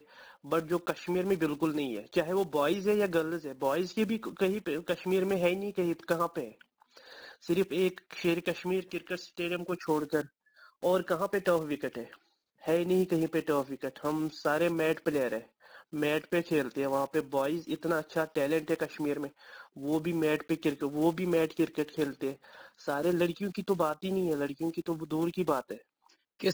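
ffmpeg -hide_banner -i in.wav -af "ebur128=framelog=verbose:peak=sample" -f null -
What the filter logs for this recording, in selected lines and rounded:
Integrated loudness:
  I:         -31.4 LUFS
  Threshold: -41.9 LUFS
Loudness range:
  LRA:         2.3 LU
  Threshold: -51.8 LUFS
  LRA low:   -33.0 LUFS
  LRA high:  -30.7 LUFS
Sample peak:
  Peak:      -14.2 dBFS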